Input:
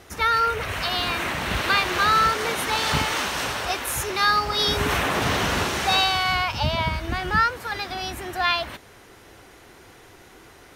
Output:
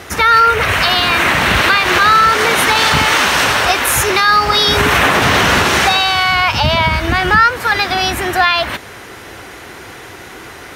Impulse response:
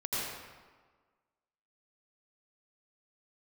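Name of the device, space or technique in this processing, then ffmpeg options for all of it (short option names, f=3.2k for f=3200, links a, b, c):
mastering chain: -af "highpass=53,equalizer=f=1.8k:t=o:w=1.7:g=4,acompressor=threshold=-26dB:ratio=1.5,alimiter=level_in=15dB:limit=-1dB:release=50:level=0:latency=1,volume=-1dB"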